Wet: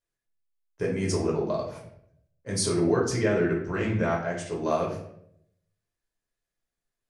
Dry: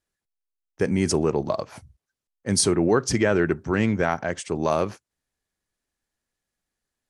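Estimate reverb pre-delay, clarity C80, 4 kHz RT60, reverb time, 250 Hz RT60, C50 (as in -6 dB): 7 ms, 9.5 dB, 0.50 s, 0.70 s, 0.85 s, 5.5 dB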